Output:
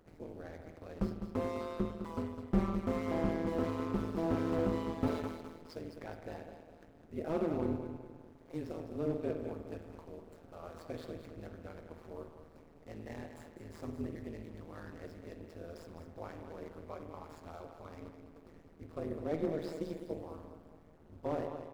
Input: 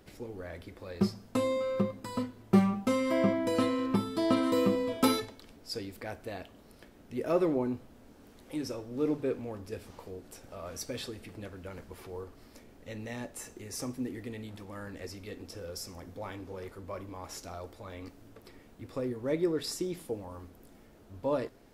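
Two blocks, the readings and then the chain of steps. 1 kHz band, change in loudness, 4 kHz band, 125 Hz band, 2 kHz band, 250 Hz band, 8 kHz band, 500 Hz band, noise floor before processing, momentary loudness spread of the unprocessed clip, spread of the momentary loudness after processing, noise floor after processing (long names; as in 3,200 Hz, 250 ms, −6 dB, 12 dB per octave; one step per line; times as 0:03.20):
−5.5 dB, −6.0 dB, −15.0 dB, −3.0 dB, −7.5 dB, −6.0 dB, below −15 dB, −6.0 dB, −57 dBFS, 18 LU, 18 LU, −59 dBFS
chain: running median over 15 samples
on a send: repeating echo 207 ms, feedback 39%, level −10 dB
on the sum: spring reverb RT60 1.2 s, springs 48 ms, chirp 25 ms, DRR 7 dB
amplitude modulation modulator 160 Hz, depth 85%
slew-rate limiting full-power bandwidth 24 Hz
level −1.5 dB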